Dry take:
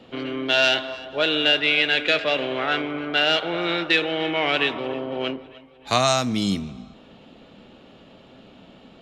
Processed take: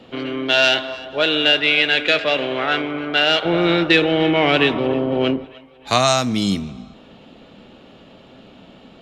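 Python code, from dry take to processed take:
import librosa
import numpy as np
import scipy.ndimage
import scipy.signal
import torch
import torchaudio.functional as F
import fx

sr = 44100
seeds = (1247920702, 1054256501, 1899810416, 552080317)

y = fx.low_shelf(x, sr, hz=420.0, db=10.5, at=(3.45, 5.45))
y = y * librosa.db_to_amplitude(3.5)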